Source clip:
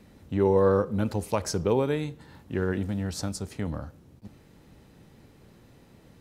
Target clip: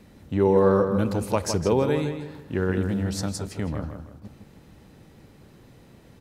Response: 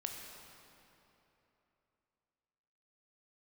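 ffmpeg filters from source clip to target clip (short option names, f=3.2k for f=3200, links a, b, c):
-filter_complex "[0:a]asplit=2[a][b];[b]adelay=160,lowpass=f=4k:p=1,volume=-7dB,asplit=2[c][d];[d]adelay=160,lowpass=f=4k:p=1,volume=0.37,asplit=2[e][f];[f]adelay=160,lowpass=f=4k:p=1,volume=0.37,asplit=2[g][h];[h]adelay=160,lowpass=f=4k:p=1,volume=0.37[i];[a][c][e][g][i]amix=inputs=5:normalize=0,volume=2.5dB"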